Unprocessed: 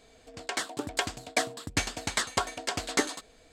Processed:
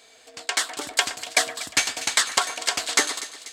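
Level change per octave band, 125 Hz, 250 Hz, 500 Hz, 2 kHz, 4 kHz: −11.5, −4.0, +1.0, +8.0, +9.5 decibels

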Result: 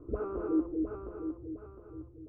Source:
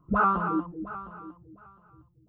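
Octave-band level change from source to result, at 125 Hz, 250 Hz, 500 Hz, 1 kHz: −7.5, −1.0, +1.5, −21.5 decibels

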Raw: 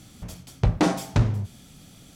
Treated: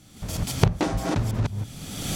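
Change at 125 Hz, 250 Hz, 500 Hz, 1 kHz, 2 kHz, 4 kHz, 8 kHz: 0.0, −0.5, +1.0, 0.0, +1.0, +5.0, +6.5 decibels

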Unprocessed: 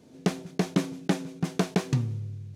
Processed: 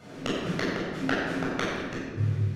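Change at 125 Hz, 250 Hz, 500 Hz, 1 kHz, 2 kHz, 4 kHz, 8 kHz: −0.5, −2.0, +1.0, +2.5, +8.0, +2.5, −4.5 decibels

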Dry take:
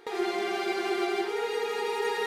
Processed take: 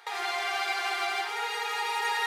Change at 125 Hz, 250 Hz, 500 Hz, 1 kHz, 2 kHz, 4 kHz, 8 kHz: can't be measured, −20.5 dB, −11.5 dB, +3.0 dB, +4.5 dB, +4.5 dB, +4.5 dB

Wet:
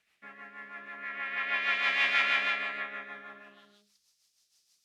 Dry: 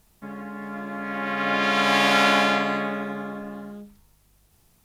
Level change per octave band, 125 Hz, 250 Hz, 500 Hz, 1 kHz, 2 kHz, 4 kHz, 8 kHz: below −25 dB, −26.5 dB, −20.0 dB, −13.5 dB, −4.0 dB, −8.5 dB, below −15 dB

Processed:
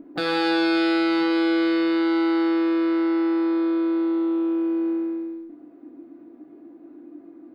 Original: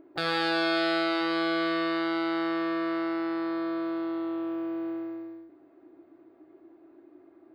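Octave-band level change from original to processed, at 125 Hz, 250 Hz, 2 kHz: can't be measured, +9.0 dB, +2.0 dB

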